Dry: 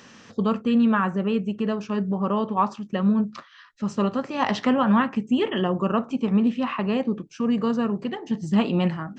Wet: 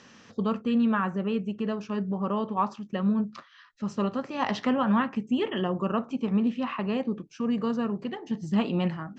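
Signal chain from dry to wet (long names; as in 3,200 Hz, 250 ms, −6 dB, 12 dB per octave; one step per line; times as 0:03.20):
low-pass filter 7,600 Hz 24 dB per octave
level −4.5 dB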